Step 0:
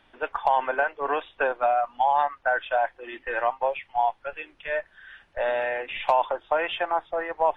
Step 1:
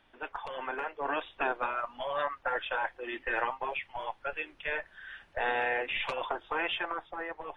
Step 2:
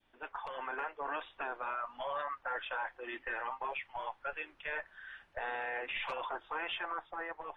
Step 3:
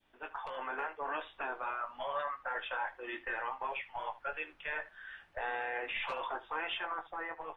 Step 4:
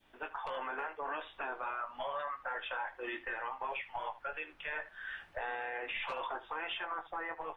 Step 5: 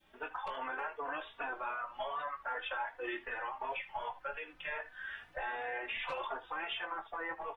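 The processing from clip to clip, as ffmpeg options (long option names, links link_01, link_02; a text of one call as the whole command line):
ffmpeg -i in.wav -af "afftfilt=real='re*lt(hypot(re,im),0.282)':imag='im*lt(hypot(re,im),0.282)':win_size=1024:overlap=0.75,dynaudnorm=framelen=240:gausssize=9:maxgain=6dB,volume=-5.5dB" out.wav
ffmpeg -i in.wav -af "adynamicequalizer=threshold=0.00631:dfrequency=1200:dqfactor=0.77:tfrequency=1200:tqfactor=0.77:attack=5:release=100:ratio=0.375:range=3.5:mode=boostabove:tftype=bell,alimiter=limit=-22dB:level=0:latency=1:release=16,volume=-7dB" out.wav
ffmpeg -i in.wav -af "aecho=1:1:19|76:0.447|0.133" out.wav
ffmpeg -i in.wav -af "alimiter=level_in=11dB:limit=-24dB:level=0:latency=1:release=305,volume=-11dB,volume=5.5dB" out.wav
ffmpeg -i in.wav -filter_complex "[0:a]asplit=2[link_01][link_02];[link_02]adelay=3.4,afreqshift=2.6[link_03];[link_01][link_03]amix=inputs=2:normalize=1,volume=3dB" out.wav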